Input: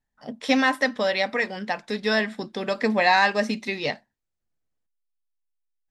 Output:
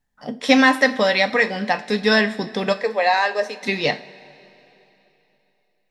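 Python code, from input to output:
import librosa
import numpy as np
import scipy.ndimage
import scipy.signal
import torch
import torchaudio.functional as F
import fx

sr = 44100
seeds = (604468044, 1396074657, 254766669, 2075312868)

y = fx.ladder_highpass(x, sr, hz=380.0, resonance_pct=40, at=(2.72, 3.62), fade=0.02)
y = fx.rev_double_slope(y, sr, seeds[0], early_s=0.32, late_s=3.3, knee_db=-19, drr_db=9.0)
y = y * librosa.db_to_amplitude(6.0)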